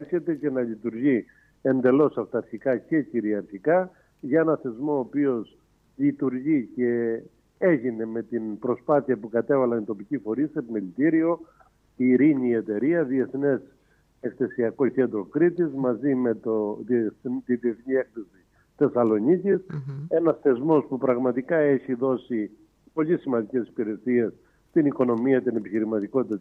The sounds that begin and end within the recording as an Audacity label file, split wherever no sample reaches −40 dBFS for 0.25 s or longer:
1.650000	3.880000	sound
4.230000	5.440000	sound
5.990000	7.260000	sound
7.610000	11.430000	sound
11.990000	13.640000	sound
14.230000	18.230000	sound
18.790000	22.460000	sound
22.960000	24.300000	sound